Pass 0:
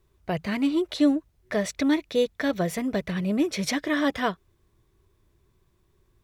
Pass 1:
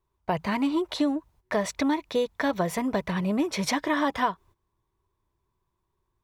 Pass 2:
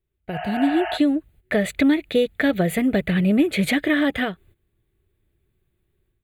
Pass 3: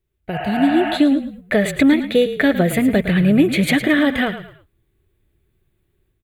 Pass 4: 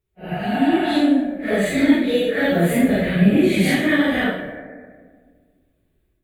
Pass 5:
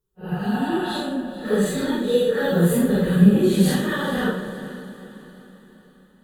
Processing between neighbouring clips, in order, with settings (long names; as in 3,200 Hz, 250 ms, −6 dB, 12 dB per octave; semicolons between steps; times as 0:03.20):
noise gate −52 dBFS, range −13 dB; parametric band 950 Hz +13 dB 0.57 octaves; downward compressor 5 to 1, threshold −21 dBFS, peak gain reduction 8 dB
healed spectral selection 0:00.35–0:00.95, 620–3,200 Hz before; automatic gain control gain up to 9.5 dB; phaser with its sweep stopped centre 2,400 Hz, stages 4
echo with shifted repeats 109 ms, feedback 33%, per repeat −32 Hz, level −11.5 dB; level +4 dB
random phases in long frames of 200 ms; on a send at −7 dB: Chebyshev low-pass with heavy ripple 2,400 Hz, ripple 9 dB + convolution reverb RT60 1.7 s, pre-delay 152 ms; on the sum: level −1.5 dB
phaser with its sweep stopped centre 440 Hz, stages 8; feedback delay with all-pass diffusion 461 ms, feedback 47%, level −14.5 dB; level +2 dB